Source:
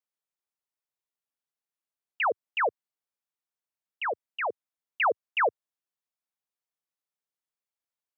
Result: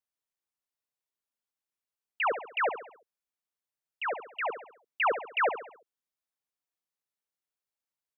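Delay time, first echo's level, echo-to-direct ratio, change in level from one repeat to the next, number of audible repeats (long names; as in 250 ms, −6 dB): 68 ms, −10.0 dB, −9.0 dB, −6.5 dB, 4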